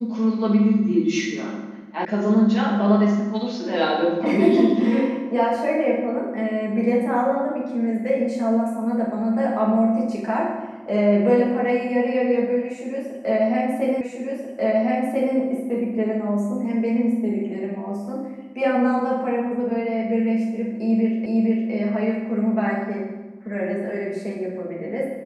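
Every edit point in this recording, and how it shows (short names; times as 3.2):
2.05 sound cut off
14.01 repeat of the last 1.34 s
21.26 repeat of the last 0.46 s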